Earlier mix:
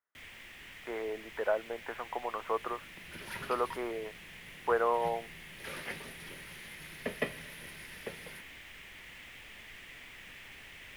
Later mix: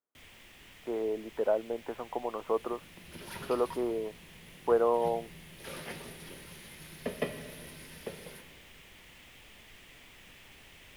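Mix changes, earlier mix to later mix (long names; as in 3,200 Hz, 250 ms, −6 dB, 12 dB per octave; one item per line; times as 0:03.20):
speech: add spectral tilt −4.5 dB per octave
second sound: send +11.5 dB
master: add parametric band 1,900 Hz −8 dB 1.1 octaves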